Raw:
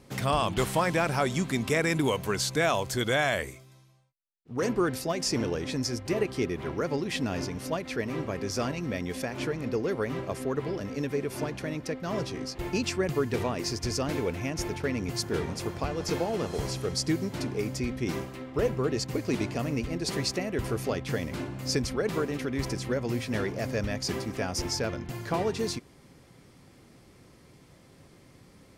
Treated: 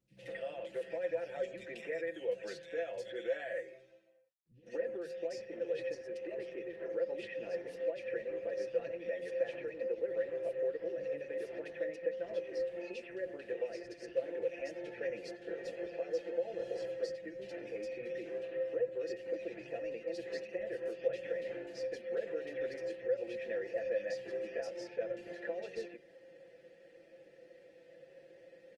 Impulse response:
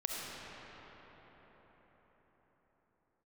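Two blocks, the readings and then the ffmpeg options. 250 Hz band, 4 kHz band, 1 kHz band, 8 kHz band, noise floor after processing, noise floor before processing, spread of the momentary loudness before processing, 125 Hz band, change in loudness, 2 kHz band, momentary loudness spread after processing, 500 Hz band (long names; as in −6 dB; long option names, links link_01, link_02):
−18.5 dB, −20.5 dB, −20.5 dB, below −25 dB, −61 dBFS, −56 dBFS, 7 LU, −29.5 dB, −9.5 dB, −12.5 dB, 11 LU, −5.0 dB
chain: -filter_complex "[0:a]bandreject=frequency=184.3:width_type=h:width=4,bandreject=frequency=368.6:width_type=h:width=4,bandreject=frequency=552.9:width_type=h:width=4,bandreject=frequency=737.2:width_type=h:width=4,bandreject=frequency=921.5:width_type=h:width=4,bandreject=frequency=1105.8:width_type=h:width=4,bandreject=frequency=1290.1:width_type=h:width=4,bandreject=frequency=1474.4:width_type=h:width=4,bandreject=frequency=1658.7:width_type=h:width=4,bandreject=frequency=1843:width_type=h:width=4,bandreject=frequency=2027.3:width_type=h:width=4,bandreject=frequency=2211.6:width_type=h:width=4,bandreject=frequency=2395.9:width_type=h:width=4,bandreject=frequency=2580.2:width_type=h:width=4,bandreject=frequency=2764.5:width_type=h:width=4,bandreject=frequency=2948.8:width_type=h:width=4,bandreject=frequency=3133.1:width_type=h:width=4,adynamicequalizer=threshold=0.00251:dfrequency=150:dqfactor=6.5:tfrequency=150:tqfactor=6.5:attack=5:release=100:ratio=0.375:range=3.5:mode=cutabove:tftype=bell,aecho=1:1:5.9:0.97,acompressor=threshold=-32dB:ratio=12,flanger=delay=3.2:depth=2.4:regen=-69:speed=1.3:shape=sinusoidal,asplit=3[link_01][link_02][link_03];[link_01]bandpass=frequency=530:width_type=q:width=8,volume=0dB[link_04];[link_02]bandpass=frequency=1840:width_type=q:width=8,volume=-6dB[link_05];[link_03]bandpass=frequency=2480:width_type=q:width=8,volume=-9dB[link_06];[link_04][link_05][link_06]amix=inputs=3:normalize=0,acrossover=split=180|2500[link_07][link_08][link_09];[link_09]adelay=80[link_10];[link_08]adelay=170[link_11];[link_07][link_11][link_10]amix=inputs=3:normalize=0,aresample=32000,aresample=44100,volume=11dB" -ar 48000 -c:a libopus -b:a 24k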